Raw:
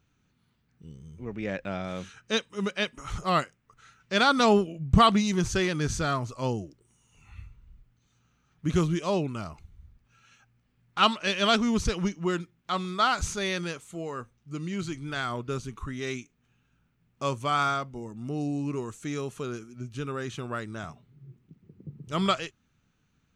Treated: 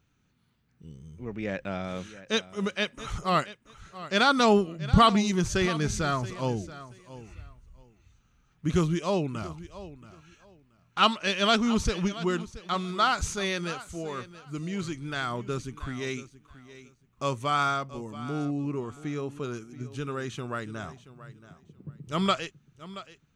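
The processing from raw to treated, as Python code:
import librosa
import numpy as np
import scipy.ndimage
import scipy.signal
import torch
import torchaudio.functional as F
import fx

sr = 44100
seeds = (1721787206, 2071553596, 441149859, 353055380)

y = fx.high_shelf(x, sr, hz=3800.0, db=-11.5, at=(18.45, 19.43))
y = fx.echo_feedback(y, sr, ms=678, feedback_pct=20, wet_db=-16.0)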